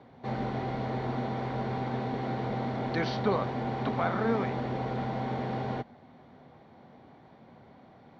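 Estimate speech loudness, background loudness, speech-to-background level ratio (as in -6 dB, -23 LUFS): -33.0 LUFS, -33.5 LUFS, 0.5 dB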